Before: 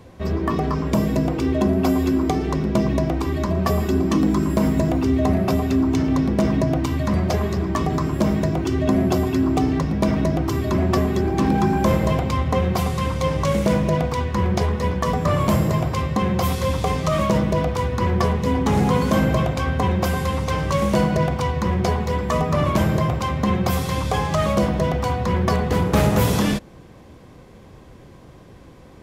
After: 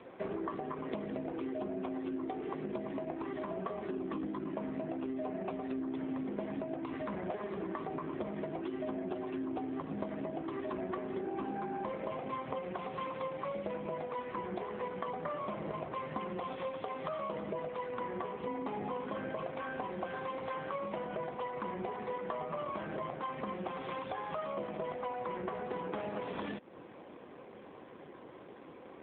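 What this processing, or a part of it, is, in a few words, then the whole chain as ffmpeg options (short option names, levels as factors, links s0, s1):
voicemail: -filter_complex "[0:a]asettb=1/sr,asplit=3[s0][s1][s2];[s0]atrim=end=9.694[s3];[s1]atrim=start=9.69:end=10.37,asetpts=PTS-STARTPTS,afade=t=in:d=0.004:c=qsin,afade=t=out:st=0.676:d=0.004:c=qsin,adynamicequalizer=threshold=0.00447:dfrequency=2300:dqfactor=3.6:tfrequency=2300:tqfactor=3.6:attack=5:release=100:ratio=0.375:range=2:mode=cutabove:tftype=bell[s4];[s2]atrim=start=10.366[s5];[s3][s4]acrossfade=d=0.004:c1=hsin:c2=qsin[s6];[s6][s5]acrossfade=d=0.004:c1=qsin:c2=hsin,highpass=320,lowpass=3200,acompressor=threshold=0.02:ratio=12" -ar 8000 -c:a libopencore_amrnb -b:a 7400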